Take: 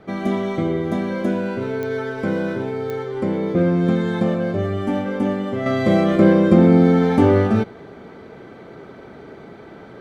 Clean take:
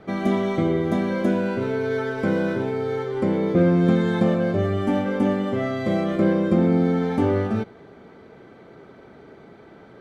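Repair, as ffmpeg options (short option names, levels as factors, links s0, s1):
-af "adeclick=t=4,asetnsamples=n=441:p=0,asendcmd='5.66 volume volume -6.5dB',volume=1"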